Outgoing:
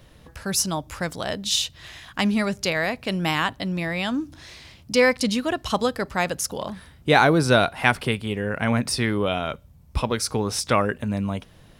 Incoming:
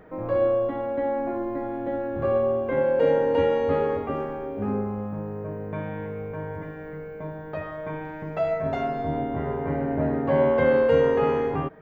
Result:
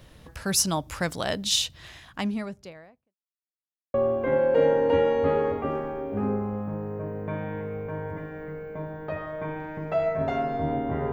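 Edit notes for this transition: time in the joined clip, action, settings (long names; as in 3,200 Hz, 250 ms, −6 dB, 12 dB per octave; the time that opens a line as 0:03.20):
outgoing
0:01.37–0:03.15: fade out and dull
0:03.15–0:03.94: silence
0:03.94: continue with incoming from 0:02.39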